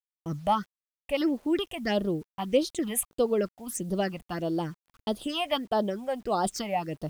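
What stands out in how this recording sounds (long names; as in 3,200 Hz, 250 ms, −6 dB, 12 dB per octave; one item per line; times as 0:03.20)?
phaser sweep stages 6, 1.6 Hz, lowest notch 350–2,200 Hz
a quantiser's noise floor 10 bits, dither none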